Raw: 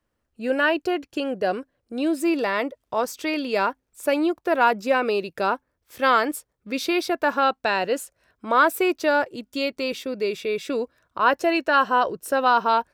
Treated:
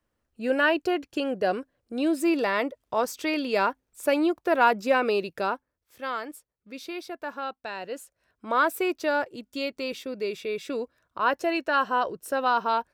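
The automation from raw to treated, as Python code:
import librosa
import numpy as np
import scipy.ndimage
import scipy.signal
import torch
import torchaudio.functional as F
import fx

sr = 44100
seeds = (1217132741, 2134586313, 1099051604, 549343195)

y = fx.gain(x, sr, db=fx.line((5.26, -1.5), (6.05, -13.0), (7.74, -13.0), (8.5, -5.0)))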